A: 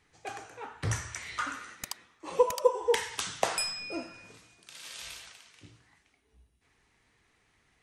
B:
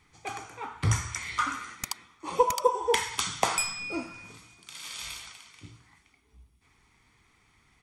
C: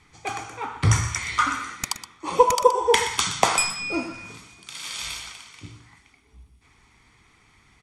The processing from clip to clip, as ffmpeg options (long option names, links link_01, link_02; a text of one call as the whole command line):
ffmpeg -i in.wav -af "aecho=1:1:0.9:0.5,volume=3.5dB" out.wav
ffmpeg -i in.wav -af "lowpass=11000,aecho=1:1:122:0.237,volume=6.5dB" out.wav